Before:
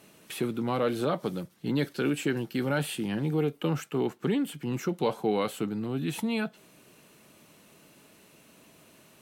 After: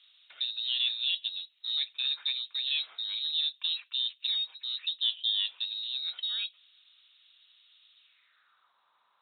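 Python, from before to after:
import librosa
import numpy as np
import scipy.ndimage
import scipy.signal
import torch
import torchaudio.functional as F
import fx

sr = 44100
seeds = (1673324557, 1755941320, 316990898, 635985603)

y = fx.freq_invert(x, sr, carrier_hz=4000)
y = fx.filter_sweep_bandpass(y, sr, from_hz=3100.0, to_hz=980.0, start_s=7.99, end_s=8.73, q=3.4)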